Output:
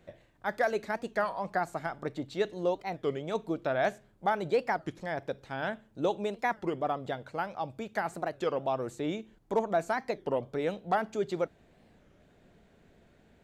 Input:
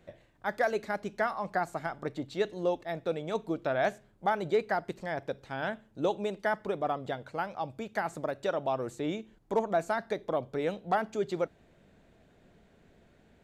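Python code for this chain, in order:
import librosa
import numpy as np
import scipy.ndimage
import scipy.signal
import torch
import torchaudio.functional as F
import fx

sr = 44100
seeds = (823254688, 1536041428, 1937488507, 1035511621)

y = fx.record_warp(x, sr, rpm=33.33, depth_cents=250.0)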